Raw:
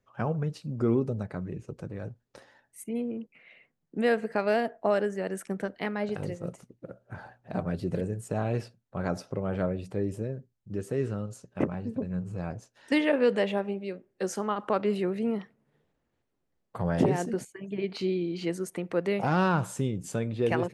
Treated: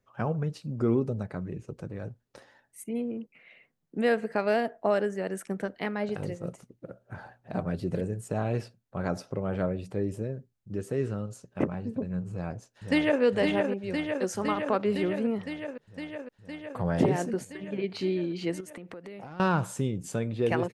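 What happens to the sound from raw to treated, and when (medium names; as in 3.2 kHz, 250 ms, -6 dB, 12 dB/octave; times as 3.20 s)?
12.30–13.22 s: echo throw 510 ms, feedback 80%, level -4.5 dB
18.60–19.40 s: compression 20:1, threshold -38 dBFS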